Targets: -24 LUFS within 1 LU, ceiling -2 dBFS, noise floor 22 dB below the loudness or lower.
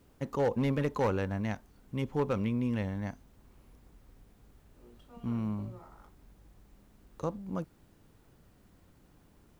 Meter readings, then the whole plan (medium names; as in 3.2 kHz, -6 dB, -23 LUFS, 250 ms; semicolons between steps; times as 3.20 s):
clipped samples 0.5%; clipping level -22.5 dBFS; loudness -33.5 LUFS; peak level -22.5 dBFS; loudness target -24.0 LUFS
-> clip repair -22.5 dBFS; trim +9.5 dB